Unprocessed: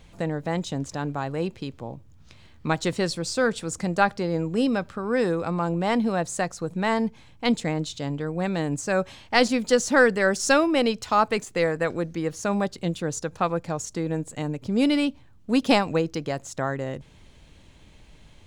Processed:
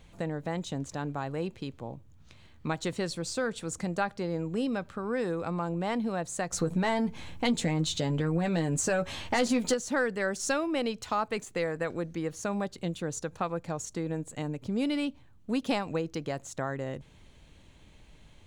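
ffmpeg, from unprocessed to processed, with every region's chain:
-filter_complex "[0:a]asettb=1/sr,asplit=3[a][b][c];[a]atrim=end=6.524[d];[b]atrim=start=6.52:end=9.74,asetpts=PTS-STARTPTS,afade=t=in:d=0.004:c=qsin,afade=t=out:st=3.216:d=0.004:c=qsin,acompressor=threshold=-27dB:ratio=2:attack=3.2:release=140:knee=1:detection=peak,aeval=exprs='0.316*sin(PI/2*2.51*val(0)/0.316)':c=same,asplit=2[e][f];[f]adelay=12,volume=-7dB[g];[e][g]amix=inputs=2:normalize=0,atrim=end_sample=142002[h];[c]atrim=start=9.736[i];[d][h]acrossfade=d=0.004:c1=hsin:c2=qsin[j];[j][i]acrossfade=d=0.004:c1=qsin:c2=hsin,acompressor=threshold=-25dB:ratio=2,equalizer=f=5.1k:t=o:w=0.22:g=-4.5,volume=-4dB"

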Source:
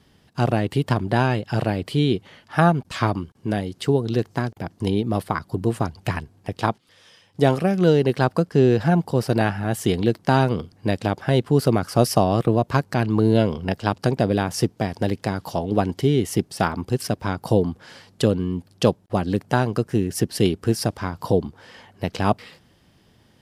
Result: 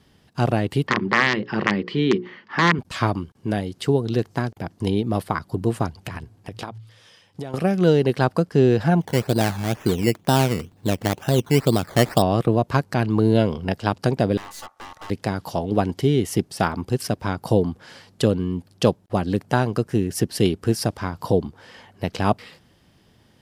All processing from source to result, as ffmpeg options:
-filter_complex "[0:a]asettb=1/sr,asplit=3[a][b][c];[a]atrim=end=0.874[d];[b]atrim=start=0.87:end=2.79,asetpts=PTS-STARTPTS,afade=t=in:d=0.004:c=qsin,afade=t=out:st=1.916:d=0.004:c=qsin,aeval=exprs='(mod(2.82*val(0)+1,2)-1)/2.82':c=same,highpass=190,equalizer=f=200:t=q:w=4:g=9,equalizer=f=370:t=q:w=4:g=6,equalizer=f=660:t=q:w=4:g=-8,equalizer=f=1.1k:t=q:w=4:g=7,equalizer=f=1.9k:t=q:w=4:g=9,equalizer=f=3.8k:t=q:w=4:g=-4,lowpass=f=4.8k:w=0.5412,lowpass=f=4.8k:w=1.3066,bandreject=f=60:t=h:w=6,bandreject=f=120:t=h:w=6,bandreject=f=180:t=h:w=6,bandreject=f=240:t=h:w=6,bandreject=f=300:t=h:w=6,bandreject=f=360:t=h:w=6,bandreject=f=420:t=h:w=6,bandreject=f=480:t=h:w=6,bandreject=f=540:t=h:w=6[e];[c]atrim=start=2.786[f];[d][e]acrossfade=d=0.004:c1=hsin:c2=qsin[g];[g][f]acrossfade=d=0.004:c1=qsin:c2=hsin,asettb=1/sr,asplit=3[h][i][j];[h]atrim=end=6.034[k];[i]atrim=start=6.03:end=7.54,asetpts=PTS-STARTPTS,afade=t=in:d=0.004:c=qsin,afade=t=out:st=1.506:d=0.004:c=qsin,bandreject=f=55.52:t=h:w=4,bandreject=f=111.04:t=h:w=4,acompressor=threshold=-27dB:ratio=12:attack=3.2:release=140:knee=1:detection=peak[l];[j]atrim=start=7.536[m];[k][l]acrossfade=d=0.004:c1=hsin:c2=qsin[n];[n][m]acrossfade=d=0.004:c1=qsin:c2=hsin,asettb=1/sr,asplit=3[o][p][q];[o]atrim=end=9.014[r];[p]atrim=start=9.01:end=12.22,asetpts=PTS-STARTPTS,afade=t=in:d=0.004:c=qsin,afade=t=out:st=3.206:d=0.004:c=qsin,lowpass=f=2.1k:p=1,acrusher=samples=14:mix=1:aa=0.000001:lfo=1:lforange=8.4:lforate=2.1[s];[q]atrim=start=12.216[t];[r][s]acrossfade=d=0.004:c1=hsin:c2=qsin[u];[u][t]acrossfade=d=0.004:c1=qsin:c2=hsin,asettb=1/sr,asplit=3[v][w][x];[v]atrim=end=14.374[y];[w]atrim=start=14.37:end=15.1,asetpts=PTS-STARTPTS,afade=t=in:d=0.004:c=qsin,afade=t=out:st=0.726:d=0.004:c=qsin,aeval=exprs='val(0)*sin(2*PI*1000*n/s)':c=same,aeval=exprs='(tanh(56.2*val(0)+0.55)-tanh(0.55))/56.2':c=same[z];[x]atrim=start=15.096[aa];[y][z]acrossfade=d=0.004:c1=hsin:c2=qsin[ab];[ab][aa]acrossfade=d=0.004:c1=qsin:c2=hsin"

